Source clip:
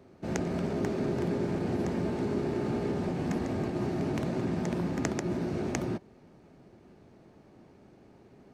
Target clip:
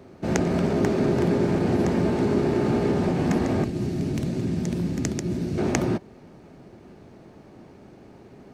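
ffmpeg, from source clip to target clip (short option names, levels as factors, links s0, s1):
-filter_complex "[0:a]asettb=1/sr,asplit=3[s0][s1][s2];[s0]atrim=end=3.644[s3];[s1]atrim=start=3.64:end=5.58,asetpts=PTS-STARTPTS,afade=t=in:d=0.004:c=qsin,afade=t=out:st=1.936:d=0.004:c=qsin,equalizer=f=980:w=0.48:g=-14.5[s4];[s2]atrim=start=5.576[s5];[s3][s4]acrossfade=d=0.004:c1=hsin:c2=qsin[s6];[s6][s5]acrossfade=d=0.004:c1=qsin:c2=hsin,volume=2.66"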